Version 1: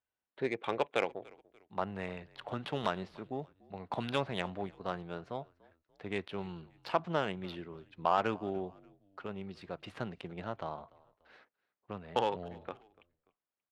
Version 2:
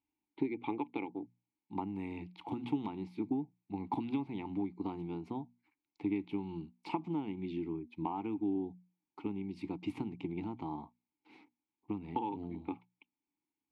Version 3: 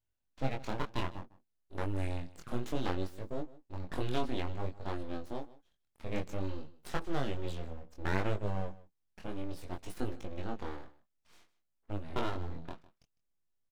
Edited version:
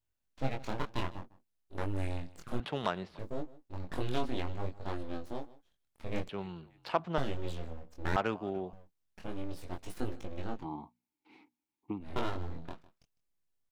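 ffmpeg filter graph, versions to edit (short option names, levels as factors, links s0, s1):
-filter_complex "[0:a]asplit=3[s0][s1][s2];[2:a]asplit=5[s3][s4][s5][s6][s7];[s3]atrim=end=2.602[s8];[s0]atrim=start=2.598:end=3.192[s9];[s4]atrim=start=3.188:end=6.292[s10];[s1]atrim=start=6.288:end=7.182[s11];[s5]atrim=start=7.178:end=8.162[s12];[s2]atrim=start=8.158:end=8.732[s13];[s6]atrim=start=8.728:end=10.66[s14];[1:a]atrim=start=10.56:end=12.09[s15];[s7]atrim=start=11.99[s16];[s8][s9]acrossfade=d=0.004:c1=hsin:c2=hsin[s17];[s17][s10]acrossfade=d=0.004:c1=hsin:c2=hsin[s18];[s18][s11]acrossfade=d=0.004:c1=hsin:c2=hsin[s19];[s19][s12]acrossfade=d=0.004:c1=hsin:c2=hsin[s20];[s20][s13]acrossfade=d=0.004:c1=hsin:c2=hsin[s21];[s21][s14]acrossfade=d=0.004:c1=hsin:c2=hsin[s22];[s22][s15]acrossfade=d=0.1:c1=tri:c2=tri[s23];[s23][s16]acrossfade=d=0.1:c1=tri:c2=tri"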